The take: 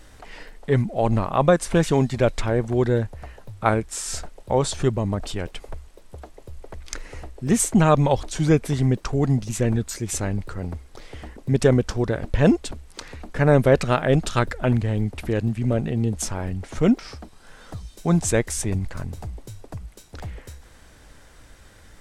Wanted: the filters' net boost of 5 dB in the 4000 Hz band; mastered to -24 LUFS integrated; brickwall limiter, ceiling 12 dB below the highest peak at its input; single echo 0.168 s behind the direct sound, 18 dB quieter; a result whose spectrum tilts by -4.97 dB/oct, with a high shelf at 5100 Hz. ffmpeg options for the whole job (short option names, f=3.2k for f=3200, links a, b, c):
-af "equalizer=f=4k:t=o:g=4.5,highshelf=f=5.1k:g=4,alimiter=limit=-14.5dB:level=0:latency=1,aecho=1:1:168:0.126,volume=2dB"